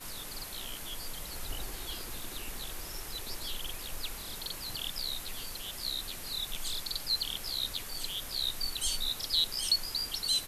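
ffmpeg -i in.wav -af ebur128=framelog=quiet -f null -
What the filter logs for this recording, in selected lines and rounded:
Integrated loudness:
  I:         -34.2 LUFS
  Threshold: -44.2 LUFS
Loudness range:
  LRA:         8.3 LU
  Threshold: -55.0 LUFS
  LRA low:   -39.3 LUFS
  LRA high:  -31.0 LUFS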